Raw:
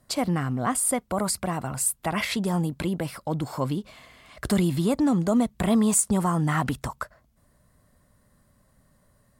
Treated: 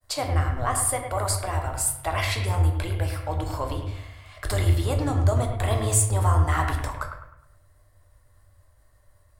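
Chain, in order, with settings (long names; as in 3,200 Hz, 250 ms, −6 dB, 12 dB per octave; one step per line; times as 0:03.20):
sub-octave generator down 1 octave, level −3 dB
downward expander −59 dBFS
drawn EQ curve 100 Hz 0 dB, 180 Hz −26 dB, 300 Hz −11 dB, 640 Hz −2 dB
bucket-brigade delay 104 ms, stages 2,048, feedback 40%, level −8 dB
rectangular room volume 93 cubic metres, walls mixed, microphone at 0.5 metres
level +1.5 dB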